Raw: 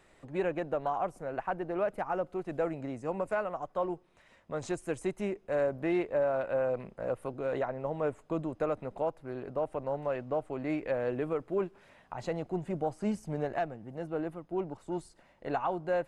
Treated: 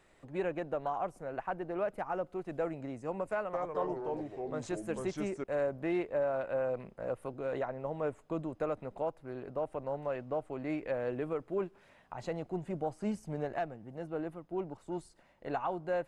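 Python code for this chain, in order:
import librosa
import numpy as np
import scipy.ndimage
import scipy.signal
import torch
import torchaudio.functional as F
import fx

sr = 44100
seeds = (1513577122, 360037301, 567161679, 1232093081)

y = fx.echo_pitch(x, sr, ms=213, semitones=-3, count=3, db_per_echo=-3.0, at=(3.32, 5.44))
y = y * librosa.db_to_amplitude(-3.0)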